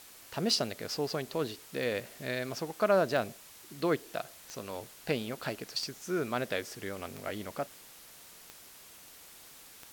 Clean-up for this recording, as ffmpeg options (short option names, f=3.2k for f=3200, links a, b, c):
-af "adeclick=t=4,afwtdn=0.0025"